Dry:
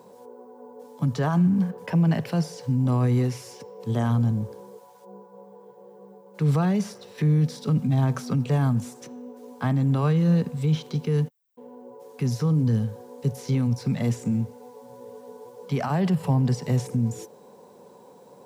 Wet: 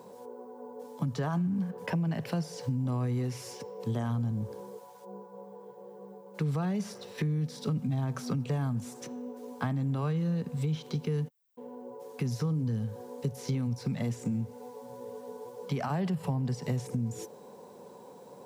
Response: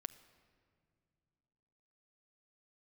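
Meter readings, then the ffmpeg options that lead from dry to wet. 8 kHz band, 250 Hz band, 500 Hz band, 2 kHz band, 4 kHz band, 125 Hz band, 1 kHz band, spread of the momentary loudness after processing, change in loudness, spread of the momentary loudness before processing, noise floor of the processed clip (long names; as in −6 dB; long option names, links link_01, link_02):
−4.5 dB, −8.0 dB, −6.0 dB, −5.5 dB, −5.0 dB, −8.5 dB, −6.5 dB, 17 LU, −8.5 dB, 15 LU, −51 dBFS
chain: -af "acompressor=threshold=-29dB:ratio=4"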